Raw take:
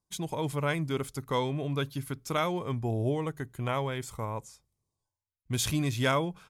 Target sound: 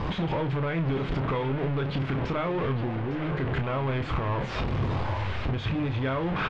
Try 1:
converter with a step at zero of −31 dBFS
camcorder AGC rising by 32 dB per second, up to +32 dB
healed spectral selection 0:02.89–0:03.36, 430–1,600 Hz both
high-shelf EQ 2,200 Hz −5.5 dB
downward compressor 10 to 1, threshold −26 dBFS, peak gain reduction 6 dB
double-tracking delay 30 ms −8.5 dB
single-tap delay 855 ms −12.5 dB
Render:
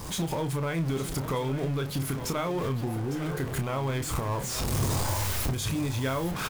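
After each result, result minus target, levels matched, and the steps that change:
converter with a step at zero: distortion −6 dB; 4,000 Hz band +4.0 dB
change: converter with a step at zero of −21 dBFS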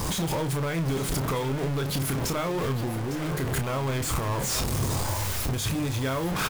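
4,000 Hz band +5.5 dB
add after healed spectral selection: low-pass filter 3,100 Hz 24 dB per octave

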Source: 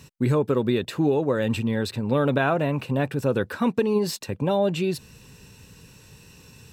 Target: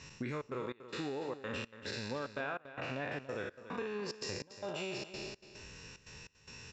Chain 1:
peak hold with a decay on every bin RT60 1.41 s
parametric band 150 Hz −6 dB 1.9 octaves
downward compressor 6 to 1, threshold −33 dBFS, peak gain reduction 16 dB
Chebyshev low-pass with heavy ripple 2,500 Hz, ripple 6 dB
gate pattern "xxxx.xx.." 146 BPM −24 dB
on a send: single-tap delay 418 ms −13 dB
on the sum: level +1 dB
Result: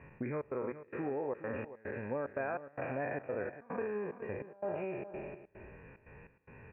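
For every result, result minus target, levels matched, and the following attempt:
echo 133 ms late; 2,000 Hz band −4.0 dB
peak hold with a decay on every bin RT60 1.41 s
parametric band 150 Hz −6 dB 1.9 octaves
downward compressor 6 to 1, threshold −33 dBFS, peak gain reduction 16 dB
Chebyshev low-pass with heavy ripple 2,500 Hz, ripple 6 dB
gate pattern "xxxx.xx.." 146 BPM −24 dB
on a send: single-tap delay 285 ms −13 dB
on the sum: level +1 dB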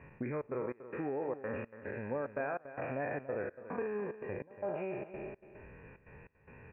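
2,000 Hz band −4.0 dB
peak hold with a decay on every bin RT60 1.41 s
parametric band 150 Hz −6 dB 1.9 octaves
downward compressor 6 to 1, threshold −33 dBFS, peak gain reduction 16 dB
Chebyshev low-pass with heavy ripple 7,400 Hz, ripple 6 dB
gate pattern "xxxx.xx.." 146 BPM −24 dB
on a send: single-tap delay 285 ms −13 dB
on the sum: level +1 dB

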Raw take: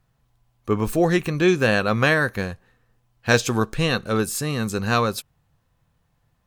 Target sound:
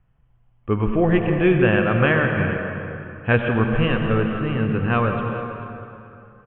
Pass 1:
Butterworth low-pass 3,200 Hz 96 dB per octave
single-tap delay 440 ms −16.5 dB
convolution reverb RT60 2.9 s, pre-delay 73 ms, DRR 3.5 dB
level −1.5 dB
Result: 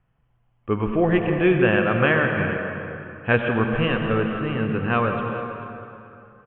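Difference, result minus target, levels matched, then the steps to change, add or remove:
125 Hz band −2.5 dB
add after Butterworth low-pass: low-shelf EQ 120 Hz +9 dB

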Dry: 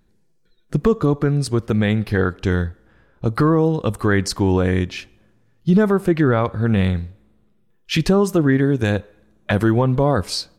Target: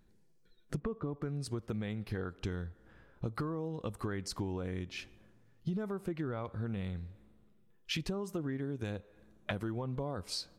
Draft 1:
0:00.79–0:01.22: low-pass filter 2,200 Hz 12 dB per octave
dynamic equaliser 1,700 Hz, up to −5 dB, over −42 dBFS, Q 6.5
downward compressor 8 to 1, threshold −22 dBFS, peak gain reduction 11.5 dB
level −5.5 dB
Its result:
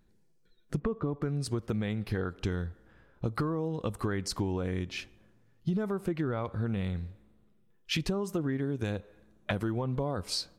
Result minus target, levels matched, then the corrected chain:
downward compressor: peak gain reduction −5.5 dB
0:00.79–0:01.22: low-pass filter 2,200 Hz 12 dB per octave
dynamic equaliser 1,700 Hz, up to −5 dB, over −42 dBFS, Q 6.5
downward compressor 8 to 1, threshold −28.5 dBFS, peak gain reduction 17.5 dB
level −5.5 dB

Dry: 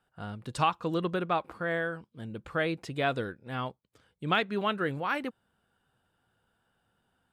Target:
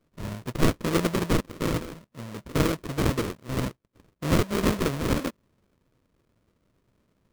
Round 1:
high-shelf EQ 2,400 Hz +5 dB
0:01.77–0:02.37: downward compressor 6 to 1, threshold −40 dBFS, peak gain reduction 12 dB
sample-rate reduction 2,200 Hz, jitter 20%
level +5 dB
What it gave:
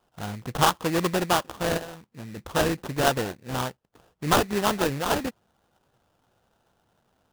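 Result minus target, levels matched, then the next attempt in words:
sample-rate reduction: distortion −12 dB
high-shelf EQ 2,400 Hz +5 dB
0:01.77–0:02.37: downward compressor 6 to 1, threshold −40 dBFS, peak gain reduction 12 dB
sample-rate reduction 800 Hz, jitter 20%
level +5 dB

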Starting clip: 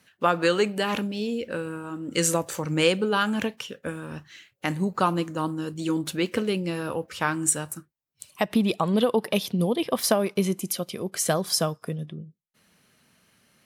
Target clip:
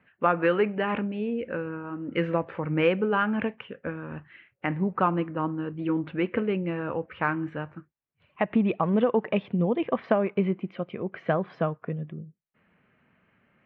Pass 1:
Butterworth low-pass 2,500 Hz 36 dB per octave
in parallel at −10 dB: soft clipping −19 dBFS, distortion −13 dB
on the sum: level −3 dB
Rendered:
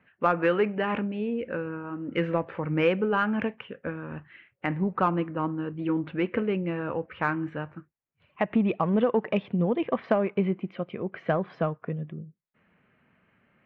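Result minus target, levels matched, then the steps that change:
soft clipping: distortion +12 dB
change: soft clipping −9.5 dBFS, distortion −25 dB

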